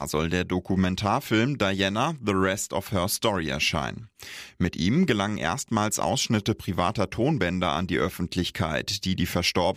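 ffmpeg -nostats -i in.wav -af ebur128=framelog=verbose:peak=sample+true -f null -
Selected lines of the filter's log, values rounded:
Integrated loudness:
  I:         -25.5 LUFS
  Threshold: -35.7 LUFS
Loudness range:
  LRA:         1.2 LU
  Threshold: -45.7 LUFS
  LRA low:   -26.3 LUFS
  LRA high:  -25.1 LUFS
Sample peak:
  Peak:       -9.4 dBFS
True peak:
  Peak:       -9.4 dBFS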